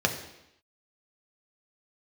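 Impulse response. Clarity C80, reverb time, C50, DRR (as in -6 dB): 11.0 dB, 0.85 s, 9.0 dB, 2.5 dB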